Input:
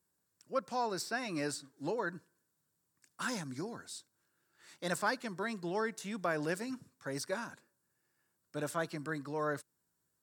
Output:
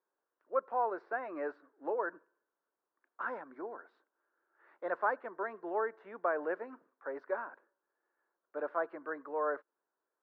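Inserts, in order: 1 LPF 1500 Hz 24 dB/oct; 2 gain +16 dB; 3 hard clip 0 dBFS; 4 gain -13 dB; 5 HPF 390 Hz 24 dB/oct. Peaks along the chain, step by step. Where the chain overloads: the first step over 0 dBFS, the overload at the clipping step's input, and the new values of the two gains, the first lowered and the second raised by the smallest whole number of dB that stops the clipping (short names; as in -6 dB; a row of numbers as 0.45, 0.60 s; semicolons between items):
-21.0, -5.0, -5.0, -18.0, -18.5 dBFS; no overload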